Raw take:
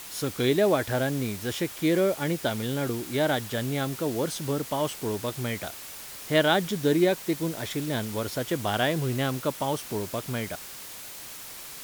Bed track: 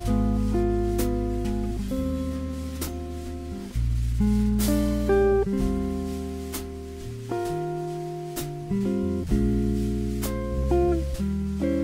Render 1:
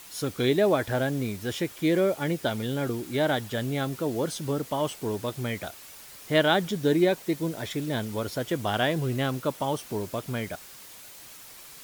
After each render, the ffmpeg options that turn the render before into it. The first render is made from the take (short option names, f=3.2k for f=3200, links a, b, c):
-af "afftdn=nr=6:nf=-42"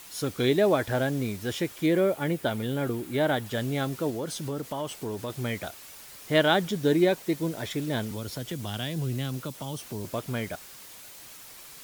-filter_complex "[0:a]asettb=1/sr,asplit=3[a][b][c];[a]atrim=end=1.864[d];[b]atrim=start=1.86:end=3.46,asetpts=PTS-STARTPTS,afade=t=in:d=0.004:c=qsin,afade=t=out:st=1.596:d=0.004:c=qsin,equalizer=f=5.5k:w=1.1:g=-5.5[e];[c]atrim=start=3.456[f];[d][e]acrossfade=d=0.004:c1=hsin:c2=qsin[g];[g][f]acrossfade=d=0.004:c1=qsin:c2=hsin,asettb=1/sr,asplit=3[h][i][j];[h]atrim=end=4.104[k];[i]atrim=start=4.1:end=5.3,asetpts=PTS-STARTPTS,afade=t=in:d=0.004:c=qsin,afade=t=out:st=1.196:d=0.004:c=qsin,acompressor=threshold=-30dB:ratio=2.5:attack=3.2:release=140:knee=1:detection=peak[l];[j]atrim=start=5.296[m];[k][l]acrossfade=d=0.004:c1=hsin:c2=qsin[n];[n][m]acrossfade=d=0.004:c1=qsin:c2=hsin,asettb=1/sr,asplit=3[o][p][q];[o]atrim=end=8.114[r];[p]atrim=start=8.11:end=10.05,asetpts=PTS-STARTPTS,afade=t=in:d=0.004:c=qsin,afade=t=out:st=1.936:d=0.004:c=qsin,acrossover=split=230|3000[s][t][u];[t]acompressor=threshold=-37dB:ratio=6:attack=3.2:release=140:knee=2.83:detection=peak[v];[s][v][u]amix=inputs=3:normalize=0[w];[q]atrim=start=10.046[x];[r][w]acrossfade=d=0.004:c1=hsin:c2=qsin[y];[y][x]acrossfade=d=0.004:c1=qsin:c2=hsin"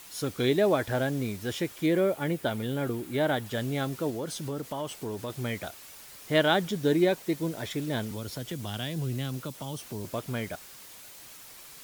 -af "volume=-1.5dB"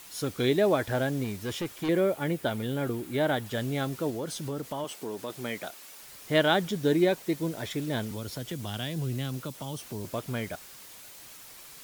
-filter_complex "[0:a]asettb=1/sr,asplit=3[a][b][c];[a]atrim=end=1.244[d];[b]atrim=start=1.24:end=1.89,asetpts=PTS-STARTPTS,afade=t=in:d=0.004:c=qsin,afade=t=out:st=0.646:d=0.004:c=qsin,asoftclip=type=hard:threshold=-28dB[e];[c]atrim=start=1.886[f];[d][e]acrossfade=d=0.004:c1=hsin:c2=qsin[g];[g][f]acrossfade=d=0.004:c1=qsin:c2=hsin,asettb=1/sr,asplit=3[h][i][j];[h]atrim=end=4.844[k];[i]atrim=start=4.84:end=6.03,asetpts=PTS-STARTPTS,afade=t=in:d=0.004:c=qsin,afade=t=out:st=1.186:d=0.004:c=qsin,highpass=210[l];[j]atrim=start=6.026[m];[k][l]acrossfade=d=0.004:c1=hsin:c2=qsin[n];[n][m]acrossfade=d=0.004:c1=qsin:c2=hsin"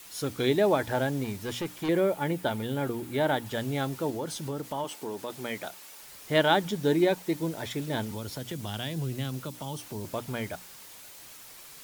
-af "bandreject=f=60:t=h:w=6,bandreject=f=120:t=h:w=6,bandreject=f=180:t=h:w=6,bandreject=f=240:t=h:w=6,bandreject=f=300:t=h:w=6,adynamicequalizer=threshold=0.00224:dfrequency=880:dqfactor=7.9:tfrequency=880:tqfactor=7.9:attack=5:release=100:ratio=0.375:range=4:mode=boostabove:tftype=bell"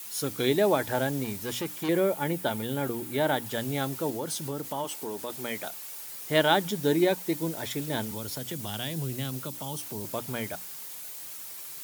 -af "highpass=100,highshelf=f=7.9k:g=10.5"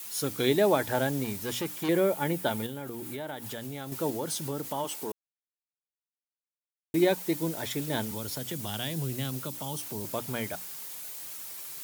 -filter_complex "[0:a]asettb=1/sr,asplit=3[a][b][c];[a]atrim=end=2.664[d];[b]atrim=start=2.66:end=3.92,asetpts=PTS-STARTPTS,afade=t=in:d=0.004:c=qsin,afade=t=out:st=1.256:d=0.004:c=qsin,acompressor=threshold=-34dB:ratio=5:attack=3.2:release=140:knee=1:detection=peak[e];[c]atrim=start=3.916[f];[d][e]acrossfade=d=0.004:c1=hsin:c2=qsin[g];[g][f]acrossfade=d=0.004:c1=qsin:c2=hsin,asplit=3[h][i][j];[h]atrim=end=5.12,asetpts=PTS-STARTPTS,afade=t=out:st=5.116:d=0.004:c=hsin[k];[i]atrim=start=5.12:end=6.94,asetpts=PTS-STARTPTS,volume=0[l];[j]atrim=start=6.94,asetpts=PTS-STARTPTS,afade=t=in:d=0.004:c=hsin[m];[k][l][m]concat=n=3:v=0:a=1"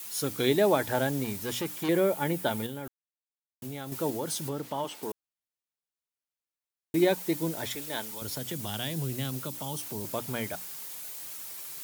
-filter_complex "[0:a]asettb=1/sr,asplit=3[a][b][c];[a]atrim=end=4.494[d];[b]atrim=start=4.49:end=5.03,asetpts=PTS-STARTPTS,afade=t=in:d=0.004:c=qsin,afade=t=out:st=0.536:d=0.004:c=qsin,acrossover=split=5000[e][f];[f]acompressor=threshold=-48dB:ratio=4:attack=1:release=60[g];[e][g]amix=inputs=2:normalize=0[h];[c]atrim=start=5.026[i];[d][h]acrossfade=d=0.004:c1=hsin:c2=qsin[j];[j][i]acrossfade=d=0.004:c1=qsin:c2=hsin,asettb=1/sr,asplit=3[k][l][m];[k]atrim=end=7.754[n];[l]atrim=start=7.75:end=8.22,asetpts=PTS-STARTPTS,afade=t=in:d=0.004:c=qsin,afade=t=out:st=0.466:d=0.004:c=qsin,highpass=f=740:p=1[o];[m]atrim=start=8.216[p];[n][o]acrossfade=d=0.004:c1=hsin:c2=qsin[q];[q][p]acrossfade=d=0.004:c1=qsin:c2=hsin,asplit=3[r][s][t];[r]atrim=end=2.88,asetpts=PTS-STARTPTS,afade=t=out:st=2.876:d=0.004:c=hsin[u];[s]atrim=start=2.88:end=3.62,asetpts=PTS-STARTPTS,volume=0[v];[t]atrim=start=3.62,asetpts=PTS-STARTPTS,afade=t=in:d=0.004:c=hsin[w];[u][v][w]concat=n=3:v=0:a=1"